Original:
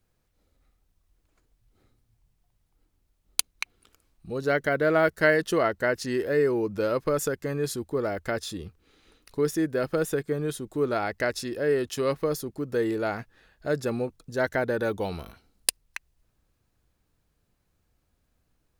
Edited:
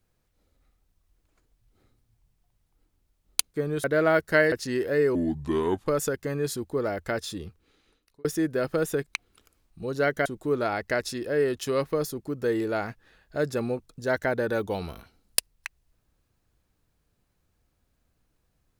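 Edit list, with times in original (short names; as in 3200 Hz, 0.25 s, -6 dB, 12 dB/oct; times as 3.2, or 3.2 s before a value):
3.54–4.73 swap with 10.26–10.56
5.41–5.91 cut
6.54–7.07 speed 73%
8.64–9.44 fade out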